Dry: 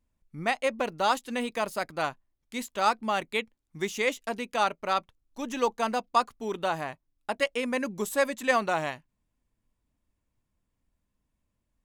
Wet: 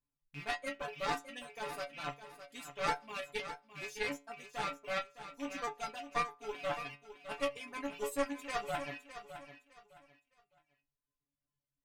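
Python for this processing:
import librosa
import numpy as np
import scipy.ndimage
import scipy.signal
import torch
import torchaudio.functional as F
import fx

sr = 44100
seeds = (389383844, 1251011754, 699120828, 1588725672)

p1 = fx.rattle_buzz(x, sr, strikes_db=-51.0, level_db=-24.0)
p2 = fx.stiff_resonator(p1, sr, f0_hz=140.0, decay_s=0.46, stiffness=0.002)
p3 = fx.cheby_harmonics(p2, sr, harmonics=(4,), levels_db=(-10,), full_scale_db=-23.0)
p4 = fx.dereverb_blind(p3, sr, rt60_s=0.94)
p5 = p4 + fx.echo_feedback(p4, sr, ms=610, feedback_pct=27, wet_db=-11.5, dry=0)
y = p5 * 10.0 ** (2.0 / 20.0)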